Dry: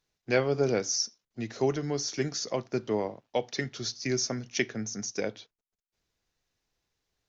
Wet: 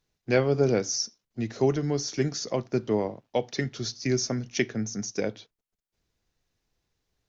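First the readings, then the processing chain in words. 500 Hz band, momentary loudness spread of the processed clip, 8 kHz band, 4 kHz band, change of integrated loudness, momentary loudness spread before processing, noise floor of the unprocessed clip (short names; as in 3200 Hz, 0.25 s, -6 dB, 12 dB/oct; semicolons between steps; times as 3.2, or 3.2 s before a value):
+3.0 dB, 8 LU, n/a, 0.0 dB, +2.5 dB, 7 LU, under -85 dBFS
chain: low shelf 400 Hz +6.5 dB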